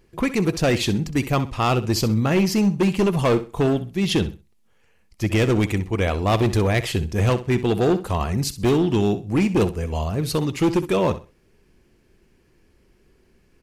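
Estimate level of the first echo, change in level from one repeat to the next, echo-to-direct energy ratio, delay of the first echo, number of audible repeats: -14.0 dB, -12.5 dB, -13.5 dB, 64 ms, 2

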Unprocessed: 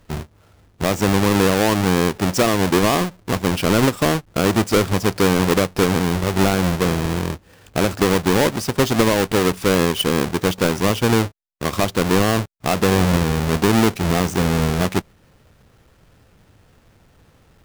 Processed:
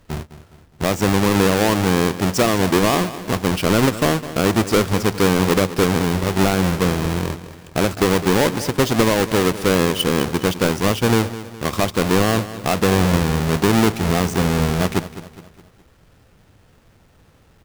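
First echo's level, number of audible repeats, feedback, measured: -14.5 dB, 4, 46%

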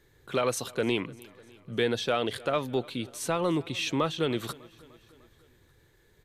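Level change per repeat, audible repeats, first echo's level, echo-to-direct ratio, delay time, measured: -4.5 dB, 3, -23.0 dB, -21.0 dB, 0.3 s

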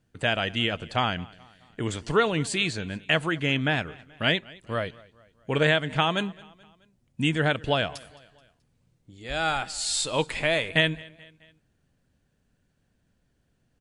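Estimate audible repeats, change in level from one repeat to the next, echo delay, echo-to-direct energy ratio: 2, -6.0 dB, 0.215 s, -22.0 dB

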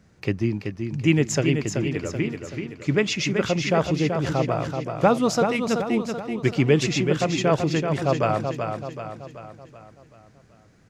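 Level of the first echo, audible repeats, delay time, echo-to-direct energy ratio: -6.0 dB, 5, 0.381 s, -5.0 dB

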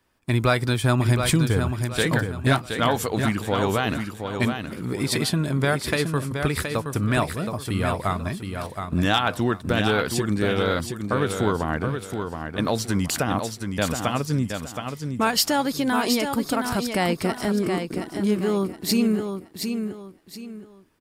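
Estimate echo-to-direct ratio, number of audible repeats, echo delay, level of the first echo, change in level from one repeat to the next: -6.0 dB, 3, 0.721 s, -6.5 dB, -10.0 dB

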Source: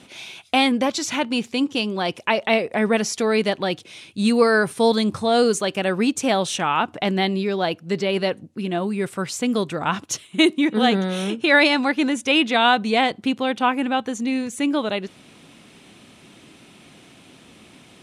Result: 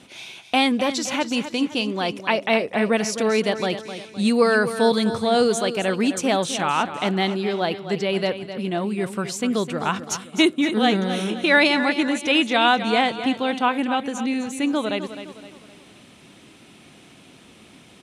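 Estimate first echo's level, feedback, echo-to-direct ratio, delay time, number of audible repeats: -11.0 dB, 42%, -10.0 dB, 0.258 s, 4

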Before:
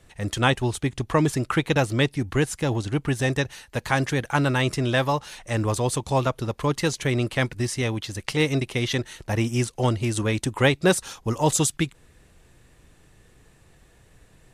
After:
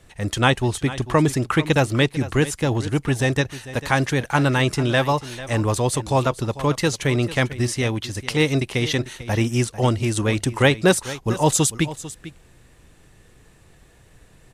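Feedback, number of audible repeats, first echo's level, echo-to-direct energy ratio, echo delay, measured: no steady repeat, 1, -15.5 dB, -15.5 dB, 0.446 s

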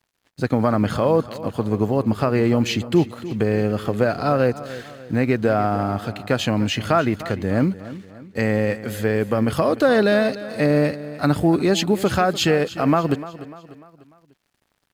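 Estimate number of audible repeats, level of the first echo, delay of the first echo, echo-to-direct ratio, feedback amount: 3, -15.5 dB, 0.297 s, -14.5 dB, 46%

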